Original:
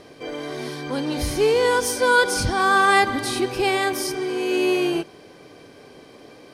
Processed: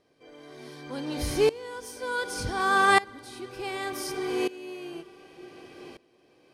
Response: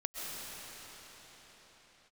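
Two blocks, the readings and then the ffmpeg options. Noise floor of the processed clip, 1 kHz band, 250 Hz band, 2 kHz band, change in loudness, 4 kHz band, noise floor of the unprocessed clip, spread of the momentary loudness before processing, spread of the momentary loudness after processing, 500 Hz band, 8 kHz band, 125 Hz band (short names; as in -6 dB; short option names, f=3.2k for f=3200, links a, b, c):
-64 dBFS, -6.5 dB, -9.5 dB, -7.5 dB, -6.5 dB, -8.5 dB, -47 dBFS, 14 LU, 24 LU, -8.5 dB, -10.0 dB, -8.0 dB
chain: -filter_complex "[0:a]asplit=2[a][b];[1:a]atrim=start_sample=2205,asetrate=30870,aresample=44100,adelay=106[c];[b][c]afir=irnorm=-1:irlink=0,volume=-21dB[d];[a][d]amix=inputs=2:normalize=0,aeval=exprs='val(0)*pow(10,-21*if(lt(mod(-0.67*n/s,1),2*abs(-0.67)/1000),1-mod(-0.67*n/s,1)/(2*abs(-0.67)/1000),(mod(-0.67*n/s,1)-2*abs(-0.67)/1000)/(1-2*abs(-0.67)/1000))/20)':c=same,volume=-2dB"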